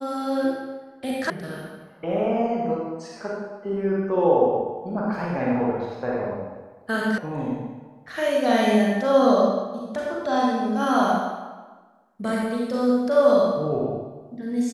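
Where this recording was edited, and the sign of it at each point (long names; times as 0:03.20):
0:01.30: cut off before it has died away
0:07.18: cut off before it has died away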